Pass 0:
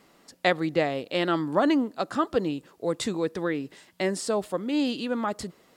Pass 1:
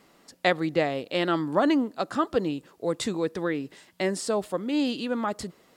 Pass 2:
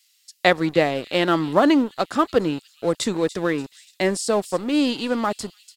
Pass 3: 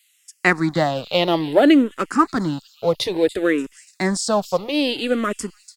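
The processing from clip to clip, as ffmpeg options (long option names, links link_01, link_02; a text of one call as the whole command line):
ffmpeg -i in.wav -af anull out.wav
ffmpeg -i in.wav -filter_complex "[0:a]acrossover=split=2900[link_01][link_02];[link_01]aeval=exprs='sgn(val(0))*max(abs(val(0))-0.00794,0)':channel_layout=same[link_03];[link_02]aecho=1:1:290|580|870|1160|1450:0.224|0.105|0.0495|0.0232|0.0109[link_04];[link_03][link_04]amix=inputs=2:normalize=0,volume=6.5dB" out.wav
ffmpeg -i in.wav -filter_complex "[0:a]asplit=2[link_01][link_02];[link_02]afreqshift=-0.59[link_03];[link_01][link_03]amix=inputs=2:normalize=1,volume=5dB" out.wav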